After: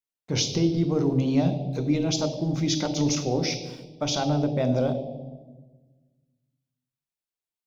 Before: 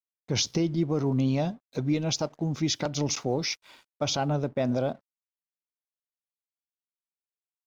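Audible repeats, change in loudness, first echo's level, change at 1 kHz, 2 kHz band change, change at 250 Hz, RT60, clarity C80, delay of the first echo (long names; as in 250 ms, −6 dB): no echo audible, +3.0 dB, no echo audible, +1.5 dB, +0.5 dB, +4.0 dB, 1.4 s, 11.0 dB, no echo audible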